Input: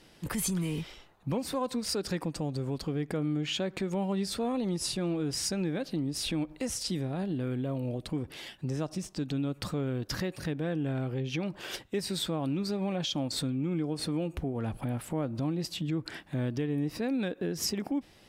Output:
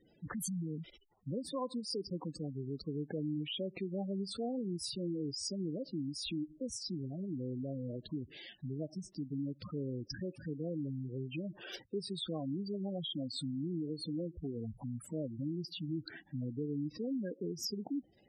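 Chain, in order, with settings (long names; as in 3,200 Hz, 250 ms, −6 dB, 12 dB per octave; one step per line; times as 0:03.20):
gate on every frequency bin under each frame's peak −10 dB strong
low-shelf EQ 79 Hz −10.5 dB
level −5 dB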